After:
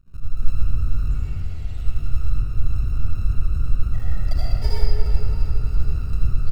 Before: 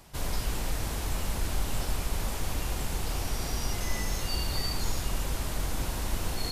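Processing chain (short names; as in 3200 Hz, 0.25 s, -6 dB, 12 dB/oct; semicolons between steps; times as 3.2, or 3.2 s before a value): 1.08–1.78 elliptic high-pass 1900 Hz; loudest bins only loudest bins 4; wow and flutter 130 cents; in parallel at +2 dB: sample-and-hold 33×; on the sum: half-wave rectifier; feedback echo 0.34 s, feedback 57%, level -11.5 dB; reverb RT60 3.0 s, pre-delay 66 ms, DRR -8 dB; gain -1 dB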